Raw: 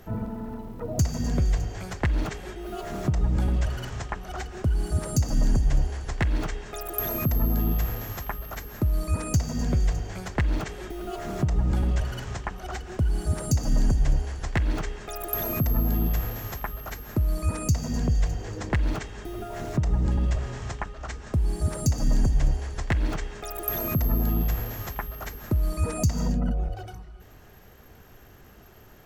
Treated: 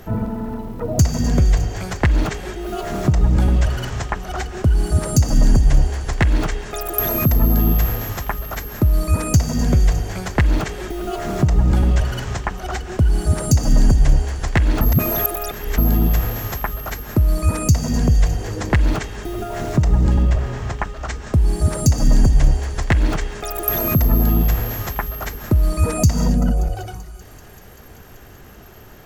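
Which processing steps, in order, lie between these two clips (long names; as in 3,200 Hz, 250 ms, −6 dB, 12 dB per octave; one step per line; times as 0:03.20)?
0:14.81–0:15.78: reverse
0:20.22–0:20.79: high-shelf EQ 3,700 Hz −8.5 dB
delay with a high-pass on its return 193 ms, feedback 83%, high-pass 4,100 Hz, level −18 dB
level +8.5 dB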